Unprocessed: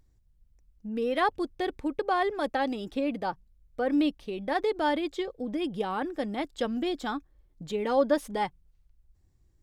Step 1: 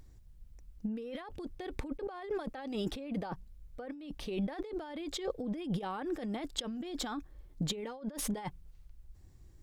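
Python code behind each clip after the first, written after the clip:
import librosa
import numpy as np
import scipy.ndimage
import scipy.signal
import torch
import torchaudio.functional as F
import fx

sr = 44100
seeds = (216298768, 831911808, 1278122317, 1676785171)

y = fx.over_compress(x, sr, threshold_db=-39.0, ratio=-1.0)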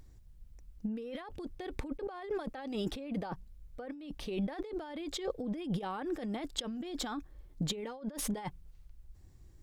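y = x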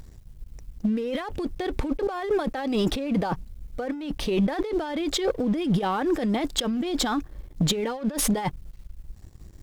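y = fx.leveller(x, sr, passes=2)
y = y * 10.0 ** (5.5 / 20.0)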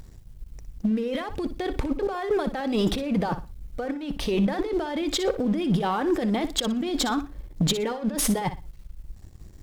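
y = fx.echo_feedback(x, sr, ms=60, feedback_pct=24, wet_db=-12)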